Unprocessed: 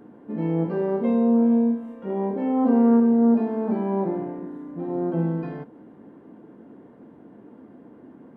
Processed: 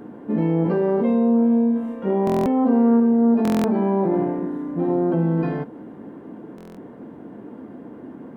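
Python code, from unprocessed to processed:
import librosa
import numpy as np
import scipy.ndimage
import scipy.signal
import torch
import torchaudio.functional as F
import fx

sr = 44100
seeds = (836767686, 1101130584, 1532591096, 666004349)

p1 = fx.over_compress(x, sr, threshold_db=-28.0, ratio=-1.0)
p2 = x + (p1 * librosa.db_to_amplitude(-1.0))
y = fx.buffer_glitch(p2, sr, at_s=(2.25, 3.43, 6.56), block=1024, repeats=8)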